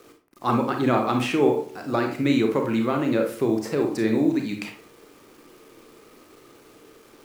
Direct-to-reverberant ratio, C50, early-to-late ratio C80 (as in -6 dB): 3.0 dB, 7.0 dB, 12.0 dB